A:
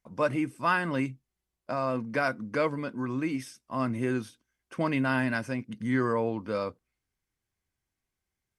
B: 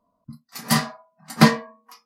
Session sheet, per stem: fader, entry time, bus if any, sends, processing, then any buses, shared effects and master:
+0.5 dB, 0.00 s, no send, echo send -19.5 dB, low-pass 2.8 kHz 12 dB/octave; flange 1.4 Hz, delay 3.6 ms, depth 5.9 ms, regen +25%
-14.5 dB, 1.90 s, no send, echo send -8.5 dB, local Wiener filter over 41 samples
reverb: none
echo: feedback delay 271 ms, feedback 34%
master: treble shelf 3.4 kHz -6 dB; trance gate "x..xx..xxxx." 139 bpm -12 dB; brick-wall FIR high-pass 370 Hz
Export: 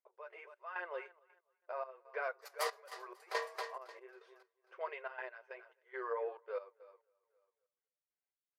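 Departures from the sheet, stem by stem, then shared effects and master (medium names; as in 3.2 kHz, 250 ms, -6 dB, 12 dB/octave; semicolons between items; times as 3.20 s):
stem A +0.5 dB -> -6.0 dB; stem B: missing local Wiener filter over 41 samples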